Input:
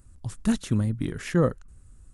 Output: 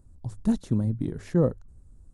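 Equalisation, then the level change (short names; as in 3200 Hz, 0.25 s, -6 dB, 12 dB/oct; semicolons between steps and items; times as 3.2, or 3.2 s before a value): band shelf 1900 Hz -8.5 dB; high shelf 2700 Hz -12 dB; notches 50/100 Hz; 0.0 dB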